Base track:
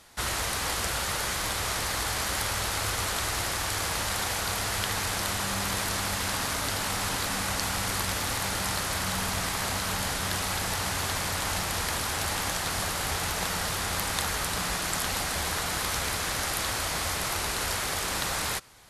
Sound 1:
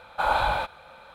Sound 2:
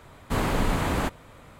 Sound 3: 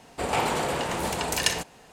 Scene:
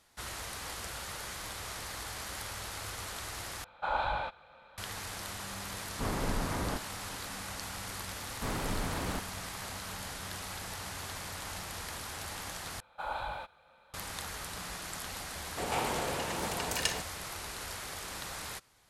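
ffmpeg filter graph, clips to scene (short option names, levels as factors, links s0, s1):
-filter_complex "[1:a]asplit=2[s0][s1];[2:a]asplit=2[s2][s3];[0:a]volume=0.266[s4];[s0]lowpass=4900[s5];[s2]lowpass=2000[s6];[s4]asplit=3[s7][s8][s9];[s7]atrim=end=3.644[s10];[s5]atrim=end=1.14,asetpts=PTS-STARTPTS,volume=0.376[s11];[s8]atrim=start=4.776:end=12.804[s12];[s1]atrim=end=1.14,asetpts=PTS-STARTPTS,volume=0.2[s13];[s9]atrim=start=13.936[s14];[s6]atrim=end=1.59,asetpts=PTS-STARTPTS,volume=0.376,afade=t=in:d=0.004:c=hsin,afade=t=out:st=1.586:d=0.004:c=hsin,adelay=250929S[s15];[s3]atrim=end=1.59,asetpts=PTS-STARTPTS,volume=0.299,afade=t=in:d=0.004:c=hsin,afade=t=out:st=1.586:d=0.004:c=hsin,adelay=8110[s16];[3:a]atrim=end=1.92,asetpts=PTS-STARTPTS,volume=0.422,afade=t=in:d=0.004:c=hsin,afade=t=out:st=1.916:d=0.004:c=hsin,adelay=15390[s17];[s10][s11]acrossfade=d=0.004:c1=hsin:c2=hsin[s18];[s18][s12]acrossfade=d=0.004:c1=hsin:c2=hsin[s19];[s19][s13]acrossfade=d=0.004:c1=hsin:c2=hsin[s20];[s20][s14]acrossfade=d=0.004:c1=hsin:c2=hsin[s21];[s21][s15][s16][s17]amix=inputs=4:normalize=0"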